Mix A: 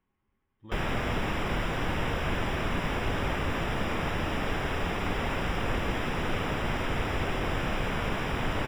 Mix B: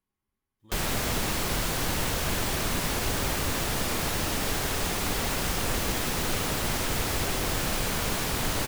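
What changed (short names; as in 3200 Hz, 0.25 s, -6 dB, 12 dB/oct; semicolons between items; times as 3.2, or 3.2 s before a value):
speech -8.5 dB; master: remove polynomial smoothing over 25 samples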